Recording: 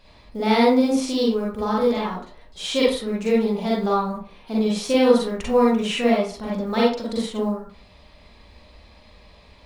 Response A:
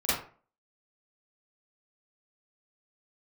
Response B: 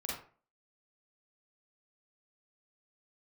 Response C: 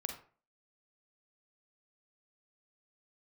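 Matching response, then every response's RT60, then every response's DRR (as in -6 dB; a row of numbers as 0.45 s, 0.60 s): B; 0.40 s, 0.40 s, 0.40 s; -13.0 dB, -5.5 dB, 3.5 dB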